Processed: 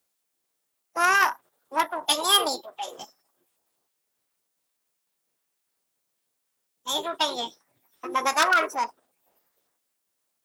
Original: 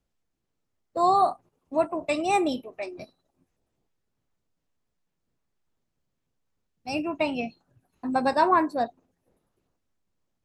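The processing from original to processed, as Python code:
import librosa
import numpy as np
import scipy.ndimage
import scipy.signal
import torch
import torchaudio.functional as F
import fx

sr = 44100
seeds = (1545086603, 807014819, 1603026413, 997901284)

y = fx.diode_clip(x, sr, knee_db=-16.5)
y = 10.0 ** (-13.5 / 20.0) * (np.abs((y / 10.0 ** (-13.5 / 20.0) + 3.0) % 4.0 - 2.0) - 1.0)
y = fx.bass_treble(y, sr, bass_db=-4, treble_db=-2)
y = fx.formant_shift(y, sr, semitones=5)
y = fx.riaa(y, sr, side='recording')
y = y * 10.0 ** (1.5 / 20.0)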